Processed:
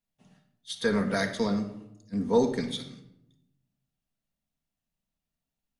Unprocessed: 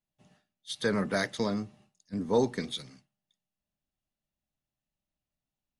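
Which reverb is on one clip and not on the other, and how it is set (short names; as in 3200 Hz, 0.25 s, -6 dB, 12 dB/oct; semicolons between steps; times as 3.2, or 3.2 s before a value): shoebox room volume 2400 m³, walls furnished, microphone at 1.7 m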